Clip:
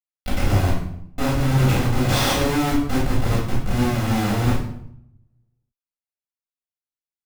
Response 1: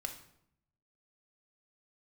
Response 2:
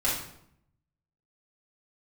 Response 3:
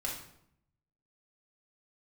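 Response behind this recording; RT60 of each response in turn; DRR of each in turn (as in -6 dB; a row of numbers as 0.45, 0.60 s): 2; 0.70, 0.70, 0.70 s; 4.0, -8.5, -3.5 dB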